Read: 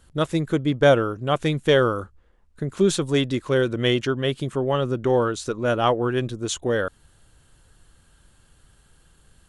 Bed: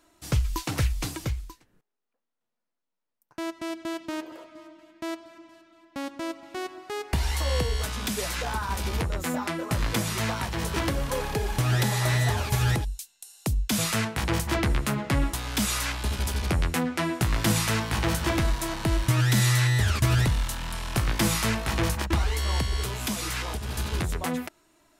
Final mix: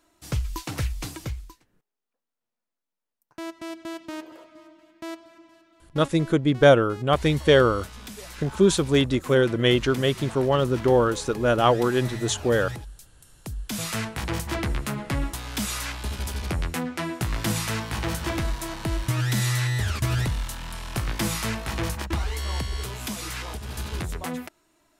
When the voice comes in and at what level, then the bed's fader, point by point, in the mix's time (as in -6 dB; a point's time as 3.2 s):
5.80 s, +1.0 dB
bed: 5.8 s -2.5 dB
6.34 s -10.5 dB
13.34 s -10.5 dB
13.95 s -2.5 dB